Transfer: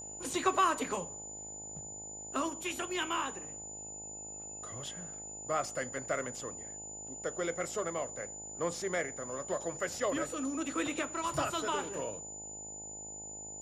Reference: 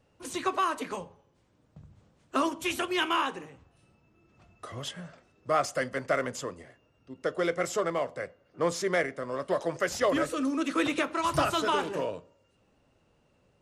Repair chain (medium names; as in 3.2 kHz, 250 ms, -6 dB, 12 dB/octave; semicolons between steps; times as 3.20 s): de-hum 52.5 Hz, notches 17; band-stop 7 kHz, Q 30; trim 0 dB, from 1.81 s +7 dB